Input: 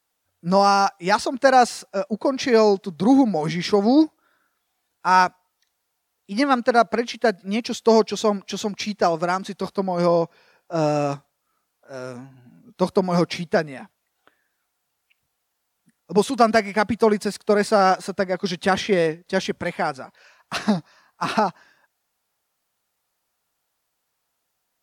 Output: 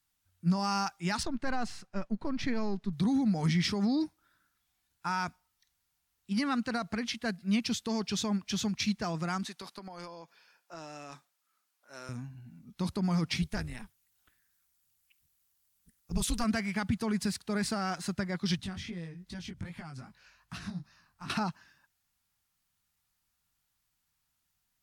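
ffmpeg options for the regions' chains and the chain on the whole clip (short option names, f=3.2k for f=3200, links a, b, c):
-filter_complex "[0:a]asettb=1/sr,asplit=3[a][b][c];[a]atrim=end=1.234[d];[b]atrim=start=1.23:end=2.93,asetpts=PTS-STARTPTS,afade=t=in:d=0.004:c=qsin,afade=t=out:st=1.696:d=0.004:c=qsin,aeval=exprs='if(lt(val(0),0),0.708*val(0),val(0))':c=same,lowpass=f=1.9k:p=1[e];[c]atrim=start=2.926[f];[d][e]acrossfade=d=0.004:c1=hsin:c2=qsin[g];[g][f]acrossfade=d=0.004:c1=qsin:c2=hsin,asettb=1/sr,asplit=3[h][i][j];[h]atrim=end=9.464[k];[i]atrim=start=9.46:end=12.09,asetpts=PTS-STARTPTS,afade=t=in:d=0.004:c=qsin,afade=t=out:st=2.626:d=0.004:c=qsin,highpass=430,acompressor=threshold=-29dB:ratio=10:attack=3.2:release=140:knee=1:detection=peak[l];[j]atrim=start=12.086[m];[k][l]acrossfade=d=0.004:c1=hsin:c2=qsin[n];[n][m]acrossfade=d=0.004:c1=qsin:c2=hsin,asettb=1/sr,asplit=3[o][p][q];[o]atrim=end=13.424[r];[p]atrim=start=13.42:end=16.44,asetpts=PTS-STARTPTS,afade=t=in:d=0.004:c=qsin,afade=t=out:st=3.016:d=0.004:c=qsin,tremolo=f=230:d=0.824,highshelf=f=5.9k:g=11.5[s];[q]atrim=start=16.436[t];[r][s]acrossfade=d=0.004:c1=hsin:c2=qsin[u];[u][t]acrossfade=d=0.004:c1=qsin:c2=hsin,asettb=1/sr,asplit=3[v][w][x];[v]atrim=end=18.574[y];[w]atrim=start=18.57:end=21.3,asetpts=PTS-STARTPTS,afade=t=in:d=0.004:c=qsin,afade=t=out:st=2.726:d=0.004:c=qsin,lowshelf=f=230:g=8.5,acompressor=threshold=-32dB:ratio=4:attack=3.2:release=140:knee=1:detection=peak,flanger=delay=17:depth=5.6:speed=2.5[z];[x]atrim=start=21.296[aa];[y][z]acrossfade=d=0.004:c1=hsin:c2=qsin[ab];[ab][aa]acrossfade=d=0.004:c1=qsin:c2=hsin,lowshelf=f=210:g=11.5,alimiter=limit=-12.5dB:level=0:latency=1:release=47,equalizer=f=510:w=0.82:g=-14.5,volume=-3.5dB"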